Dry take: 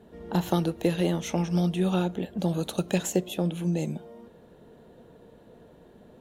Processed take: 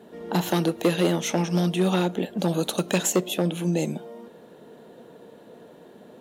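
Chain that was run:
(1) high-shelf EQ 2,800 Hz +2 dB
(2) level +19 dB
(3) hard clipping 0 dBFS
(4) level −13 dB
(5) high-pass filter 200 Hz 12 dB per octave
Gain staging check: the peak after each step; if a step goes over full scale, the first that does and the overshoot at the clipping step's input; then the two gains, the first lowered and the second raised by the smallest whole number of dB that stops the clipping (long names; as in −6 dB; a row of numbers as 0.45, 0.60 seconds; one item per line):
−9.5, +9.5, 0.0, −13.0, −8.0 dBFS
step 2, 9.5 dB
step 2 +9 dB, step 4 −3 dB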